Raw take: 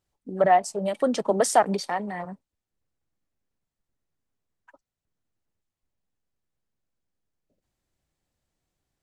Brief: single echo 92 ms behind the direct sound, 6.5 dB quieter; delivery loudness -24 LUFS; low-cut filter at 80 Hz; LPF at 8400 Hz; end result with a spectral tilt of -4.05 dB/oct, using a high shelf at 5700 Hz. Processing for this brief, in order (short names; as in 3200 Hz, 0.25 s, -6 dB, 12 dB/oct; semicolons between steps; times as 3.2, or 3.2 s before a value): HPF 80 Hz; LPF 8400 Hz; high shelf 5700 Hz +3.5 dB; echo 92 ms -6.5 dB; gain -1 dB